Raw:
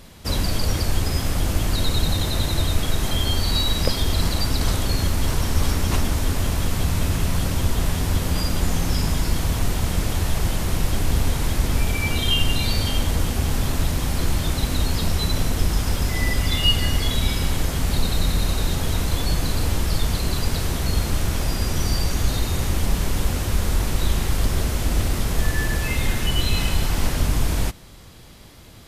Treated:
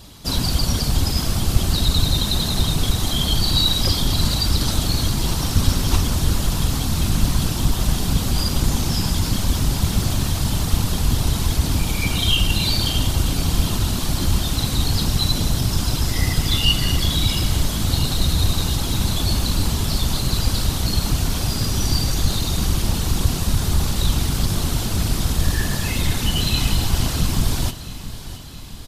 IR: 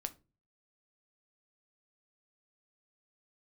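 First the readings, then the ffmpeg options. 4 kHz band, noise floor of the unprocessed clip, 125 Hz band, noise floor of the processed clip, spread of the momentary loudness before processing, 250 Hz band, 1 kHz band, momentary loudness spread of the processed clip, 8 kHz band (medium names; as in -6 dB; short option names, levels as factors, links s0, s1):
+4.5 dB, -28 dBFS, +2.5 dB, -27 dBFS, 2 LU, +3.0 dB, +0.5 dB, 3 LU, +4.0 dB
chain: -af "acontrast=42,afftfilt=real='hypot(re,im)*cos(2*PI*random(0))':imag='hypot(re,im)*sin(2*PI*random(1))':win_size=512:overlap=0.75,equalizer=f=125:t=o:w=1:g=-4,equalizer=f=500:t=o:w=1:g=-6,equalizer=f=2000:t=o:w=1:g=-7,equalizer=f=4000:t=o:w=1:g=4,aecho=1:1:669|1338|2007|2676|3345|4014:0.188|0.107|0.0612|0.0349|0.0199|0.0113,volume=1.58"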